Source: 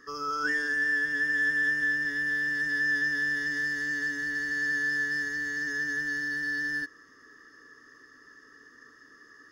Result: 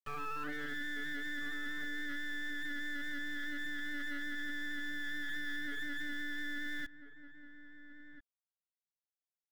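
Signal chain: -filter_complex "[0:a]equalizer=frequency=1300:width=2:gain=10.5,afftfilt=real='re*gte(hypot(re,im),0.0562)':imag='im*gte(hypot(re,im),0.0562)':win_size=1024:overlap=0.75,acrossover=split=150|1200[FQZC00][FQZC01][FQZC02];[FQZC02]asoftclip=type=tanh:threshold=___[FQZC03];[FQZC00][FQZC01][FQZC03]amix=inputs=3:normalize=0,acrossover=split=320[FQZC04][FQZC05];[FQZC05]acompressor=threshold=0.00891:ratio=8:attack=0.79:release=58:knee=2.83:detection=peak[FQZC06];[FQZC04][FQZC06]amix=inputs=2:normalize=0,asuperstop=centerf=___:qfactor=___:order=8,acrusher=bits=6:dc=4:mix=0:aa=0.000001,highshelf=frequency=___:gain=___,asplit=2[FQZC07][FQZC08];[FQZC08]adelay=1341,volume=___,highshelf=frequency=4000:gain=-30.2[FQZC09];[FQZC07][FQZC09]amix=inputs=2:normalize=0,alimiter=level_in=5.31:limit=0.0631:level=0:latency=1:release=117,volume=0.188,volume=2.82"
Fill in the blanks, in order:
0.0211, 5300, 0.76, 4700, -11.5, 0.224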